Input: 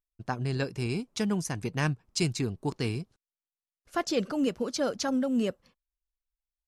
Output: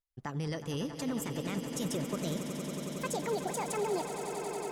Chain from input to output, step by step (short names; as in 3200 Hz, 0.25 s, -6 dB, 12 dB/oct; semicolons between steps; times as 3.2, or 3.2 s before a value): speed glide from 111% -> 172%; limiter -23.5 dBFS, peak gain reduction 9.5 dB; swelling echo 92 ms, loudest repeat 8, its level -12 dB; gain -3 dB